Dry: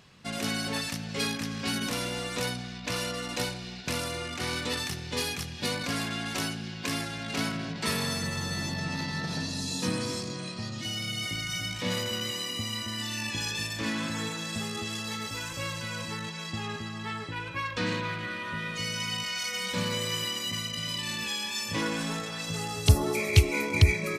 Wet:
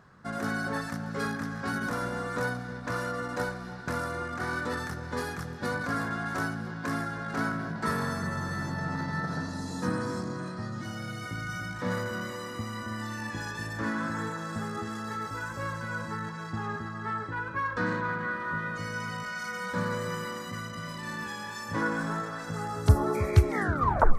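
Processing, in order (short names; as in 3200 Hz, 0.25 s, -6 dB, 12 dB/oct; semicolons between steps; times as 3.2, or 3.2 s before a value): tape stop at the end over 0.70 s; resonant high shelf 2000 Hz -10 dB, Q 3; echo with dull and thin repeats by turns 0.317 s, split 1100 Hz, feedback 59%, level -12 dB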